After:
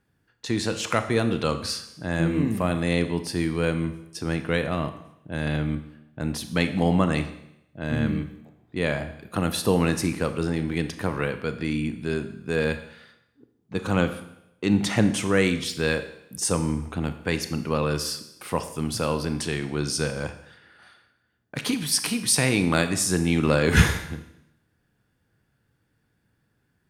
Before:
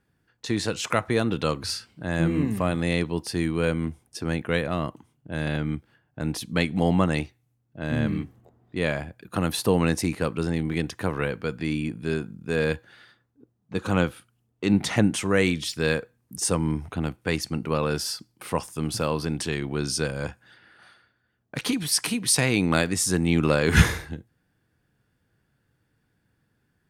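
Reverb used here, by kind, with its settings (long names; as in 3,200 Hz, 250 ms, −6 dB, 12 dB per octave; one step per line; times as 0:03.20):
four-comb reverb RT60 0.81 s, combs from 27 ms, DRR 9.5 dB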